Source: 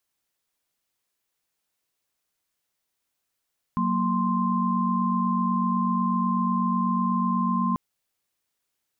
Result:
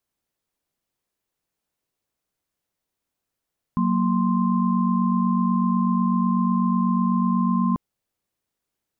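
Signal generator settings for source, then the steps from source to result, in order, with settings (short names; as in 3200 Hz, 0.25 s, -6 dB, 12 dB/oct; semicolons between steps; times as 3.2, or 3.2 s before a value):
chord F#3/A#3/C6 sine, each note -25.5 dBFS 3.99 s
tilt shelf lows +5 dB, about 840 Hz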